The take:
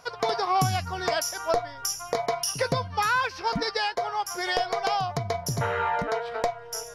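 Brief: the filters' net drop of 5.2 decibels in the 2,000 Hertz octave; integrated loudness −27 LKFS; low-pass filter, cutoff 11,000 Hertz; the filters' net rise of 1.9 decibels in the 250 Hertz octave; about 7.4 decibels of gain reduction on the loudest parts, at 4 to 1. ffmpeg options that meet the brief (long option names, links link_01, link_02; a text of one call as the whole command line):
ffmpeg -i in.wav -af "lowpass=11000,equalizer=frequency=250:width_type=o:gain=3,equalizer=frequency=2000:width_type=o:gain=-7.5,acompressor=threshold=-30dB:ratio=4,volume=6.5dB" out.wav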